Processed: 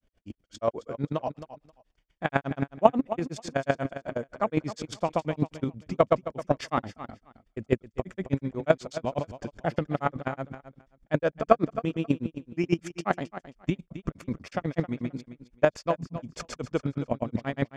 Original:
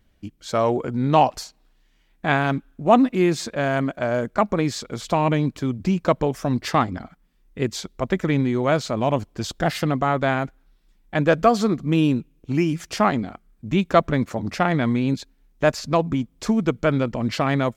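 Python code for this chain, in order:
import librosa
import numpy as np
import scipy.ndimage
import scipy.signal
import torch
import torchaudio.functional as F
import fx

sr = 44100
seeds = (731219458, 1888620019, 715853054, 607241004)

p1 = scipy.signal.sosfilt(scipy.signal.butter(2, 9100.0, 'lowpass', fs=sr, output='sos'), x)
p2 = fx.peak_eq(p1, sr, hz=540.0, db=5.0, octaves=0.56)
p3 = fx.notch(p2, sr, hz=4000.0, q=8.3)
p4 = fx.rider(p3, sr, range_db=10, speed_s=0.5)
p5 = p3 + (p4 * 10.0 ** (2.0 / 20.0))
p6 = fx.chopper(p5, sr, hz=11.0, depth_pct=65, duty_pct=15)
p7 = fx.granulator(p6, sr, seeds[0], grain_ms=100.0, per_s=8.2, spray_ms=100.0, spread_st=0)
p8 = p7 + fx.echo_feedback(p7, sr, ms=266, feedback_pct=16, wet_db=-13.0, dry=0)
y = p8 * 10.0 ** (-5.5 / 20.0)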